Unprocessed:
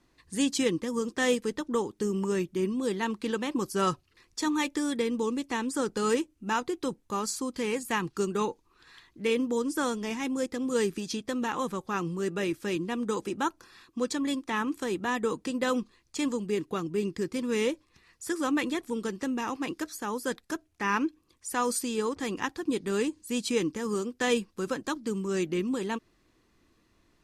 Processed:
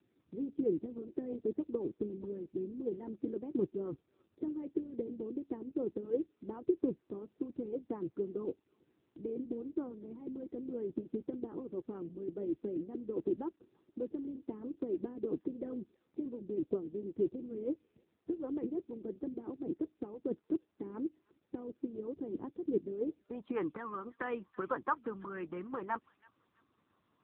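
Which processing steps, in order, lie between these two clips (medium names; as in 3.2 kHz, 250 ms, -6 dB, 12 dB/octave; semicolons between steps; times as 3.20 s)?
6.33–7.62 s: block-companded coder 5-bit; feedback echo behind a high-pass 329 ms, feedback 33%, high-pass 2.5 kHz, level -12 dB; harmonic-percussive split harmonic -12 dB; low-pass sweep 370 Hz -> 1.2 kHz, 22.98–23.57 s; trim -2 dB; AMR-NB 6.7 kbps 8 kHz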